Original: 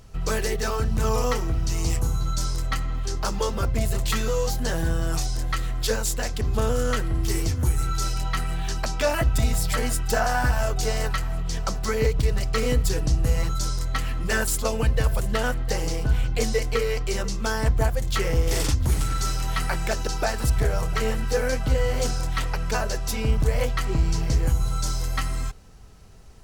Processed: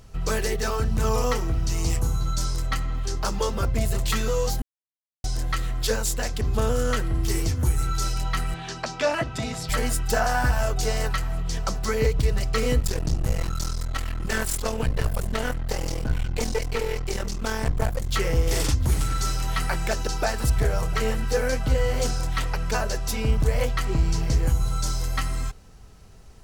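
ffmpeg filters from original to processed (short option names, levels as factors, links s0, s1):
-filter_complex "[0:a]asettb=1/sr,asplit=3[s0][s1][s2];[s0]atrim=end=8.544[s3];[s1]atrim=start=8.54:end=9.69,asetpts=PTS-STARTPTS,afade=t=in:d=0.004:c=qsin,afade=t=out:st=1.146:d=0.004:c=qsin,highpass=150,lowpass=6000[s4];[s2]atrim=start=9.686[s5];[s3][s4]acrossfade=d=0.004:c1=hsin:c2=qsin[s6];[s6][s5]acrossfade=d=0.004:c1=qsin:c2=hsin,asettb=1/sr,asplit=3[s7][s8][s9];[s7]atrim=end=12.794[s10];[s8]atrim=start=12.79:end=18.11,asetpts=PTS-STARTPTS,afade=t=in:d=0.004:c=qsin,afade=t=out:st=5.316:d=0.004:c=qsin,aeval=exprs='clip(val(0),-1,0.0282)':c=same[s11];[s9]atrim=start=18.106[s12];[s10][s11]acrossfade=d=0.004:c1=hsin:c2=qsin[s13];[s13][s12]acrossfade=d=0.004:c1=qsin:c2=hsin,asplit=3[s14][s15][s16];[s14]atrim=end=4.62,asetpts=PTS-STARTPTS,afade=t=out:st=4.616:d=0.004:c=hsin[s17];[s15]atrim=start=4.62:end=5.24,asetpts=PTS-STARTPTS,volume=0[s18];[s16]atrim=start=5.24,asetpts=PTS-STARTPTS,afade=t=in:d=0.004:c=hsin[s19];[s17][s18][s19]concat=n=3:v=0:a=1"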